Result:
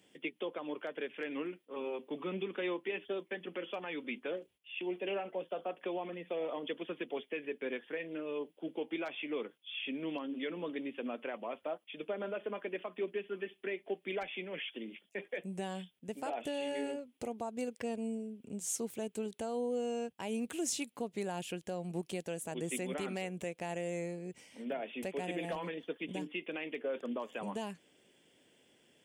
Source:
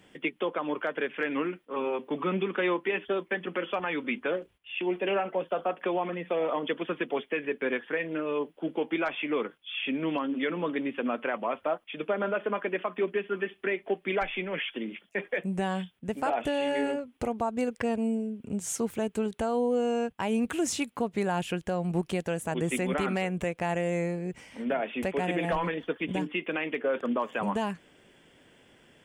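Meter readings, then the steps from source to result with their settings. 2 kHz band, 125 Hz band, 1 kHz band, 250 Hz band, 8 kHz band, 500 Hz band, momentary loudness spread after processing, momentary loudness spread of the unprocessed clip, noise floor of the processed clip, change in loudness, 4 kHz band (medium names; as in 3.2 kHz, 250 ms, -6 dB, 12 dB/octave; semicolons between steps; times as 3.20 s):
-10.5 dB, -11.0 dB, -11.5 dB, -9.0 dB, -3.0 dB, -8.5 dB, 5 LU, 4 LU, -73 dBFS, -9.0 dB, -6.0 dB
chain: high-pass 440 Hz 6 dB/octave; peaking EQ 1.3 kHz -12 dB 1.9 oct; trim -2 dB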